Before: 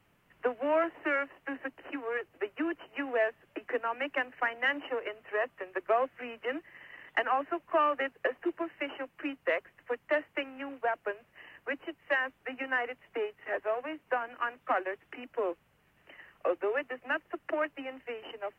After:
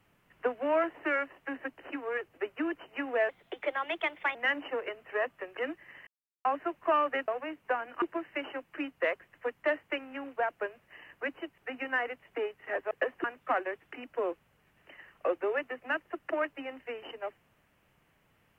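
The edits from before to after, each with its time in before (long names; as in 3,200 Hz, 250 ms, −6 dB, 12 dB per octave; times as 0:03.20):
0:03.29–0:04.54: play speed 118%
0:05.76–0:06.43: remove
0:06.93–0:07.31: silence
0:08.14–0:08.47: swap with 0:13.70–0:14.44
0:12.03–0:12.37: remove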